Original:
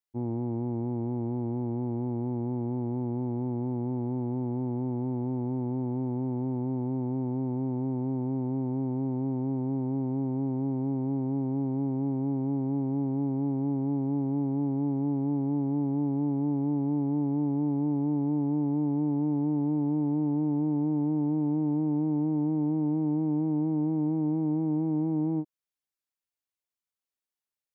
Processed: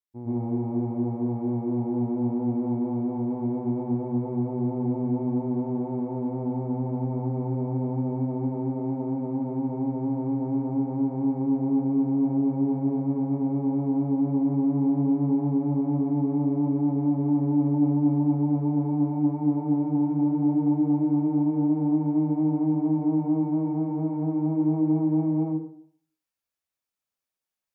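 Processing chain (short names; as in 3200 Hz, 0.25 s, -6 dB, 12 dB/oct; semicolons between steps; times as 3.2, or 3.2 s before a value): plate-style reverb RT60 0.6 s, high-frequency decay 0.7×, pre-delay 0.1 s, DRR -9.5 dB; gain -6 dB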